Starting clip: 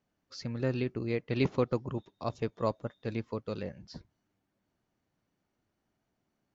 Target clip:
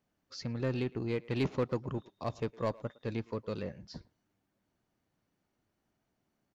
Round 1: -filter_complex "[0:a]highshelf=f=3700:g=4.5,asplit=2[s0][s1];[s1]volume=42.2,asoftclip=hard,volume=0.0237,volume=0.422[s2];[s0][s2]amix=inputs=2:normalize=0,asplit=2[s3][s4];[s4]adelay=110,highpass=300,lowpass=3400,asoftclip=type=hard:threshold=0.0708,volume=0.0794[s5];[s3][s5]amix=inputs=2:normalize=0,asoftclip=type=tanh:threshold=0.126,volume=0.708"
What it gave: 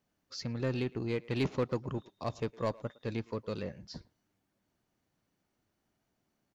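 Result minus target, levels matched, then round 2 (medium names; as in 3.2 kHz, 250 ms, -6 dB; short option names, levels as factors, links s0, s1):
8 kHz band +3.0 dB
-filter_complex "[0:a]asplit=2[s0][s1];[s1]volume=42.2,asoftclip=hard,volume=0.0237,volume=0.422[s2];[s0][s2]amix=inputs=2:normalize=0,asplit=2[s3][s4];[s4]adelay=110,highpass=300,lowpass=3400,asoftclip=type=hard:threshold=0.0708,volume=0.0794[s5];[s3][s5]amix=inputs=2:normalize=0,asoftclip=type=tanh:threshold=0.126,volume=0.708"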